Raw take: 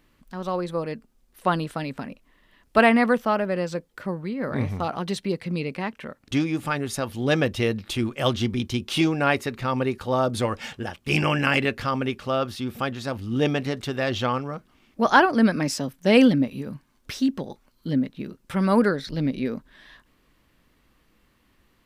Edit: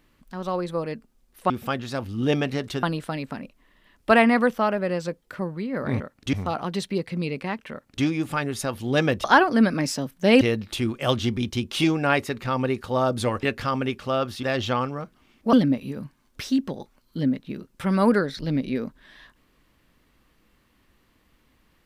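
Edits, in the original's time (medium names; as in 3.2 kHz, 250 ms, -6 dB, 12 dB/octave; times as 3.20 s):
6.05–6.38 s: copy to 4.67 s
10.60–11.63 s: delete
12.63–13.96 s: move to 1.50 s
15.06–16.23 s: move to 7.58 s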